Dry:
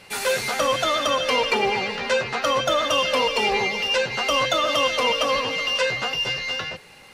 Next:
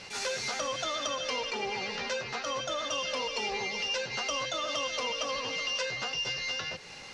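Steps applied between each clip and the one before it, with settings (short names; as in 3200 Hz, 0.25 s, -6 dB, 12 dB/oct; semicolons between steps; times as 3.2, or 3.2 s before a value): compressor 3:1, threshold -36 dBFS, peak gain reduction 14 dB; synth low-pass 5900 Hz, resonance Q 2.6; attack slew limiter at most 170 dB/s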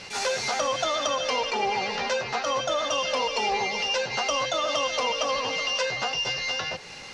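dynamic EQ 770 Hz, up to +7 dB, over -50 dBFS, Q 1.5; gain +4.5 dB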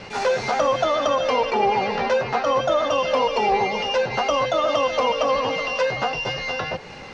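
LPF 1000 Hz 6 dB/oct; wow and flutter 19 cents; gain +9 dB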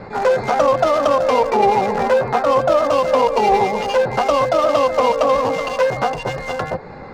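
Wiener smoothing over 15 samples; gain +6 dB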